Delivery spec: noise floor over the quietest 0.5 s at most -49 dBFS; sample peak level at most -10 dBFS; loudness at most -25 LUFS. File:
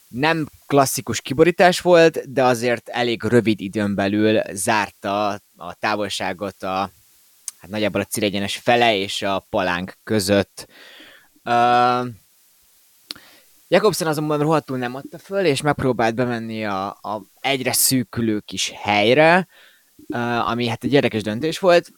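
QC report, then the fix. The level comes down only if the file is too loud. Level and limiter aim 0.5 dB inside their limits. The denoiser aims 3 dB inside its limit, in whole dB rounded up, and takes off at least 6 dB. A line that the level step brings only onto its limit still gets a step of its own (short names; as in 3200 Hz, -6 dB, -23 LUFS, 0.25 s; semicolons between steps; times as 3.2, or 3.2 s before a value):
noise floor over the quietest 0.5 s -56 dBFS: OK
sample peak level -2.0 dBFS: fail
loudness -19.5 LUFS: fail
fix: gain -6 dB; limiter -10.5 dBFS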